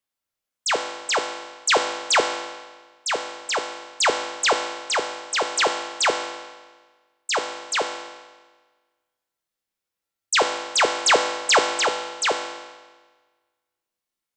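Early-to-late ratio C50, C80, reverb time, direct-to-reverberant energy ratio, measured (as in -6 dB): 7.0 dB, 8.5 dB, 1.4 s, 4.0 dB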